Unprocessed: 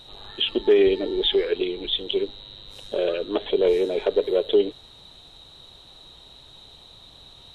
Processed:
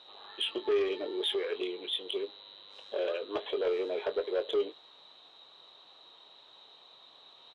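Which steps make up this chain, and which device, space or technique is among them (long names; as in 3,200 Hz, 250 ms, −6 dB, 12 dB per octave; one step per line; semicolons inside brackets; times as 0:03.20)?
intercom (band-pass filter 450–3,800 Hz; parametric band 1,100 Hz +5 dB 0.33 octaves; soft clipping −18 dBFS, distortion −16 dB; double-tracking delay 22 ms −10 dB)
level −5.5 dB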